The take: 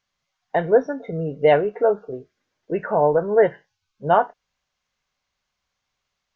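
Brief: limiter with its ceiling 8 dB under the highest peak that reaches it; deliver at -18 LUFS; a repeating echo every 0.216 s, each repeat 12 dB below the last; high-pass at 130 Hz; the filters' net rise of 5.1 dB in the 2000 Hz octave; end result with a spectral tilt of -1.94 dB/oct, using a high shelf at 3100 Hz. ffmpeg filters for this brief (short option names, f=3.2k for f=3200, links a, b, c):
-af "highpass=130,equalizer=f=2k:t=o:g=8.5,highshelf=f=3.1k:g=-7,alimiter=limit=-11dB:level=0:latency=1,aecho=1:1:216|432|648:0.251|0.0628|0.0157,volume=6dB"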